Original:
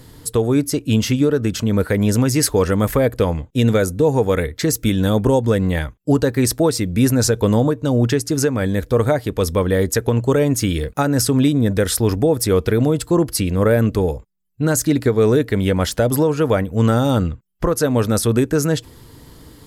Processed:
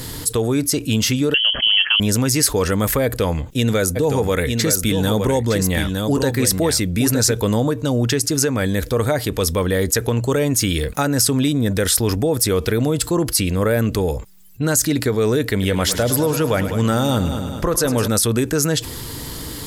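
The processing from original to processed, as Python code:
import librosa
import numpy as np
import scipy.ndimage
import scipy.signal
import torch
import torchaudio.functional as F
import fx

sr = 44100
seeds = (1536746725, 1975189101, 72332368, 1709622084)

y = fx.freq_invert(x, sr, carrier_hz=3200, at=(1.34, 2.0))
y = fx.echo_single(y, sr, ms=913, db=-7.5, at=(3.95, 7.32), fade=0.02)
y = fx.echo_heads(y, sr, ms=103, heads='first and second', feedback_pct=45, wet_db=-15.0, at=(15.51, 18.08))
y = fx.high_shelf(y, sr, hz=2000.0, db=8.5)
y = fx.env_flatten(y, sr, amount_pct=50)
y = y * librosa.db_to_amplitude(-6.5)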